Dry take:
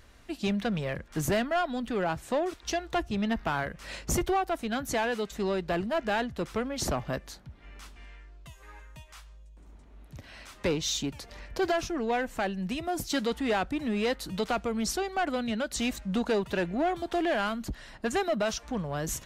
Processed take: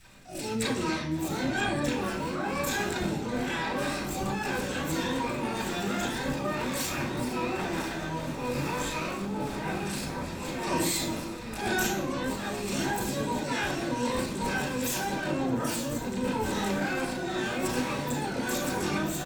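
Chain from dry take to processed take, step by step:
pitch shifter swept by a sawtooth +3 semitones, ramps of 936 ms
feedback delay with all-pass diffusion 1,844 ms, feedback 47%, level −12 dB
delay with pitch and tempo change per echo 312 ms, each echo −6 semitones, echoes 3, each echo −6 dB
downward compressor 5 to 1, threshold −32 dBFS, peak gain reduction 8.5 dB
gain on a spectral selection 0:15.42–0:16.03, 1,100–5,900 Hz −12 dB
transient designer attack −7 dB, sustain +12 dB
rotating-speaker cabinet horn 1 Hz
pitch-shifted copies added −12 semitones −5 dB, +12 semitones 0 dB
convolution reverb RT60 0.65 s, pre-delay 32 ms, DRR −5.5 dB

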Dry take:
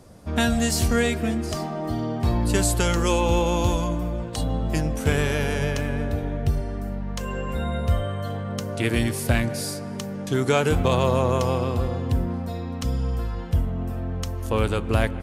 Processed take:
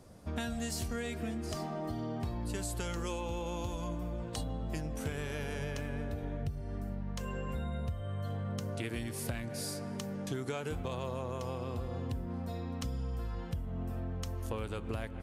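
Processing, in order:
0:06.39–0:08.79: dynamic equaliser 110 Hz, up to +7 dB, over −35 dBFS, Q 0.86
downward compressor 10 to 1, threshold −26 dBFS, peak gain reduction 16 dB
level −7 dB

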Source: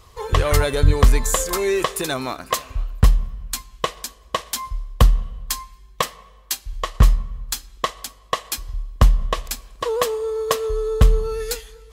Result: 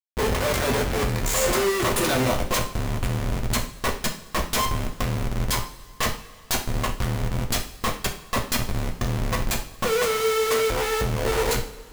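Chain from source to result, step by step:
comparator with hysteresis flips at −28.5 dBFS
coupled-rooms reverb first 0.38 s, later 2 s, from −18 dB, DRR 1 dB
level −4 dB

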